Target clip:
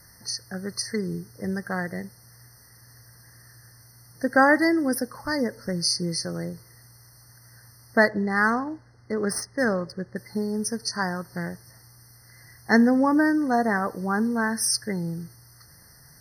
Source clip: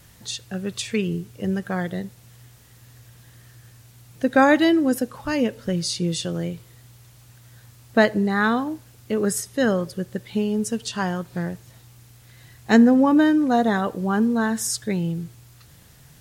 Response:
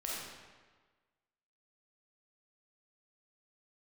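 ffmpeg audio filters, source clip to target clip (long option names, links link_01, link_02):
-filter_complex "[0:a]tiltshelf=frequency=1200:gain=-5,asettb=1/sr,asplit=3[link_01][link_02][link_03];[link_01]atrim=end=8.084[link_04];[link_02]atrim=start=8.08:end=10.16,asetpts=PTS-STARTPTS,afade=type=in:duration=0.004:curve=qsin,afade=type=out:start_time=2.076:duration=0.004:curve=qsin,adynamicsmooth=sensitivity=4.5:basefreq=2900[link_05];[link_03]atrim=start=10.156[link_06];[link_04][link_05]acrossfade=duration=0.004:curve1=hsin:curve2=qsin[link_07];[link_07][link_06]acrossfade=duration=0.004:curve1=qsin:curve2=hsin,afftfilt=real='re*eq(mod(floor(b*sr/1024/2100),2),0)':imag='im*eq(mod(floor(b*sr/1024/2100),2),0)':win_size=1024:overlap=0.75"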